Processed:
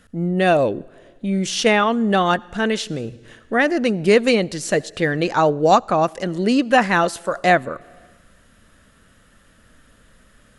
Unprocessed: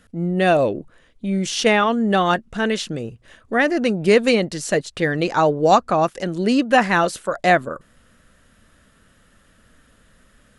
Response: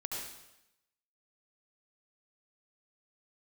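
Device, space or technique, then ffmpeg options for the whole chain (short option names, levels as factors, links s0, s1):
compressed reverb return: -filter_complex "[0:a]asplit=2[s0][s1];[1:a]atrim=start_sample=2205[s2];[s1][s2]afir=irnorm=-1:irlink=0,acompressor=threshold=0.0355:ratio=8,volume=0.299[s3];[s0][s3]amix=inputs=2:normalize=0"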